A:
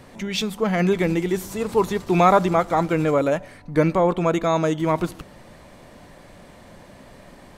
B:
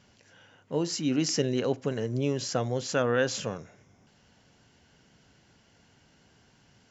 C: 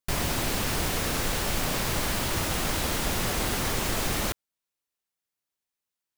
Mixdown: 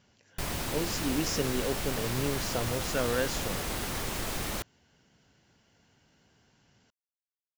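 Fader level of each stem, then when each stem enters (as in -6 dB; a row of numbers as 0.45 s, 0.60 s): mute, -4.5 dB, -6.0 dB; mute, 0.00 s, 0.30 s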